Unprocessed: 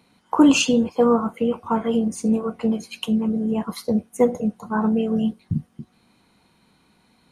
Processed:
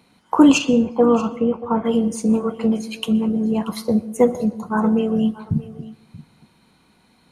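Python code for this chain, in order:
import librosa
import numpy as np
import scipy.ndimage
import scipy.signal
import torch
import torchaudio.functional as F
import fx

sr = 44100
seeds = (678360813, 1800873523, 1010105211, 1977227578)

p1 = fx.lowpass(x, sr, hz=1200.0, slope=6, at=(0.57, 1.84), fade=0.02)
p2 = p1 + fx.echo_single(p1, sr, ms=632, db=-18.5, dry=0)
p3 = fx.rev_plate(p2, sr, seeds[0], rt60_s=0.77, hf_ratio=0.6, predelay_ms=110, drr_db=18.5)
y = p3 * librosa.db_to_amplitude(2.5)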